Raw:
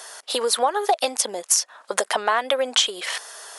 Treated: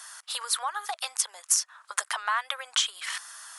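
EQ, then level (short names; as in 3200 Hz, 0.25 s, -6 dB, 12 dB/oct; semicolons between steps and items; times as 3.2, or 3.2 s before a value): ladder high-pass 980 Hz, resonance 40%; bell 9000 Hz +5 dB 1.2 oct; 0.0 dB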